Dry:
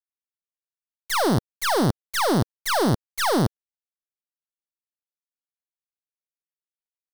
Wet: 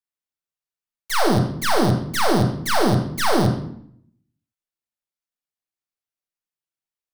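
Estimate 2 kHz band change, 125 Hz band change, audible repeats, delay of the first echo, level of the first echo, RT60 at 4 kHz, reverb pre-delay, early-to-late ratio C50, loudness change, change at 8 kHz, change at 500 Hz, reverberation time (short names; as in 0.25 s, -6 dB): +2.5 dB, +4.5 dB, none, none, none, 0.50 s, 9 ms, 5.5 dB, +2.5 dB, +1.0 dB, +2.5 dB, 0.65 s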